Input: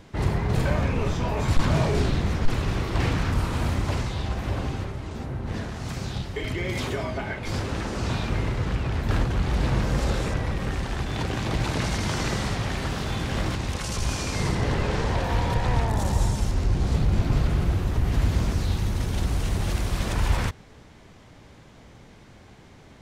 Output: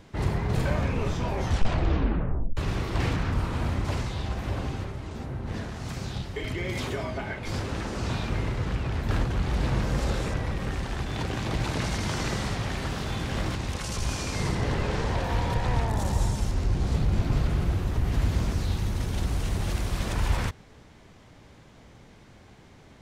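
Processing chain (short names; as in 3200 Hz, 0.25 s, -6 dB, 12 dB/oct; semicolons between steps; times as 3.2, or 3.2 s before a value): 1.26 tape stop 1.31 s; 3.16–3.85 high shelf 4900 Hz -7.5 dB; gain -2.5 dB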